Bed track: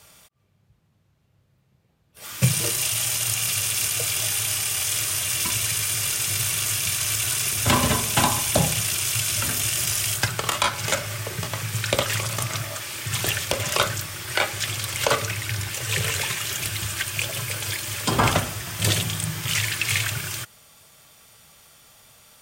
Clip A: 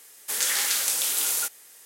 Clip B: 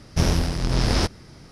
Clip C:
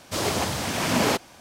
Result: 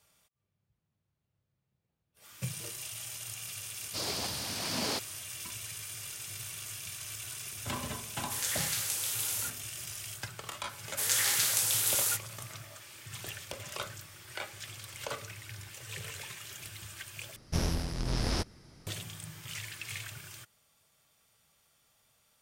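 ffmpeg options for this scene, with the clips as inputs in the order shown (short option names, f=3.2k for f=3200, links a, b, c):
-filter_complex "[1:a]asplit=2[a][b];[0:a]volume=-17.5dB[c];[3:a]equalizer=f=4.7k:w=1.6:g=12.5[d];[2:a]highshelf=f=9.9k:g=9.5[e];[c]asplit=2[f][g];[f]atrim=end=17.364[h];[e]atrim=end=1.51,asetpts=PTS-STARTPTS,volume=-10.5dB[i];[g]atrim=start=18.866[j];[d]atrim=end=1.4,asetpts=PTS-STARTPTS,volume=-14dB,afade=t=in:d=0.004:c=hsin,afade=t=out:st=1.396:d=0.004:c=hsin,adelay=3820[k];[a]atrim=end=1.85,asetpts=PTS-STARTPTS,volume=-9dB,afade=t=in:d=0.004:c=hsin,afade=t=out:st=1.846:d=0.004:c=hsin,adelay=353682S[l];[b]atrim=end=1.85,asetpts=PTS-STARTPTS,volume=-3.5dB,afade=t=in:d=0.004:c=hsin,afade=t=out:st=1.846:d=0.004:c=hsin,adelay=10690[m];[h][i]acrossfade=d=0.004:c1=hsin:c2=hsin[n];[n][j]acrossfade=d=0.004:c1=hsin:c2=hsin[o];[o][k][l][m]amix=inputs=4:normalize=0"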